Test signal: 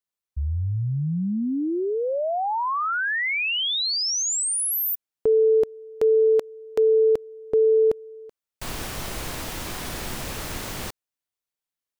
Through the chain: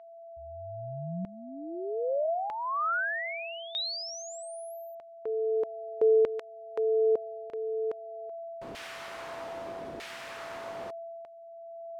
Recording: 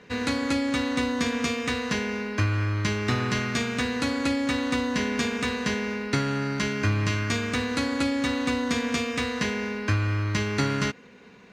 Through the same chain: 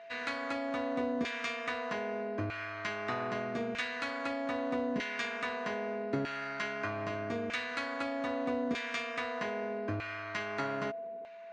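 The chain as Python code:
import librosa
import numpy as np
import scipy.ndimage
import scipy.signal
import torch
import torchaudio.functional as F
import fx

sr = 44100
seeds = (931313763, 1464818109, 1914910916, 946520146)

y = x + 10.0 ** (-34.0 / 20.0) * np.sin(2.0 * np.pi * 670.0 * np.arange(len(x)) / sr)
y = fx.filter_lfo_bandpass(y, sr, shape='saw_down', hz=0.8, low_hz=370.0, high_hz=2400.0, q=0.97)
y = y * 10.0 ** (-3.5 / 20.0)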